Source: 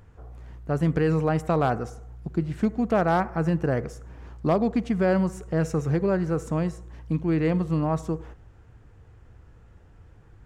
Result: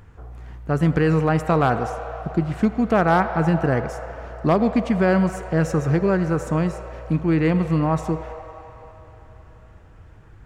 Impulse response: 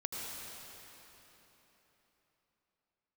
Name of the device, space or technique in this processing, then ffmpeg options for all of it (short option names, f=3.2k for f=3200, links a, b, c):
filtered reverb send: -filter_complex "[0:a]asplit=2[a][b];[b]highpass=f=530:w=0.5412,highpass=f=530:w=1.3066,lowpass=3.7k[c];[1:a]atrim=start_sample=2205[d];[c][d]afir=irnorm=-1:irlink=0,volume=-7.5dB[e];[a][e]amix=inputs=2:normalize=0,volume=4.5dB"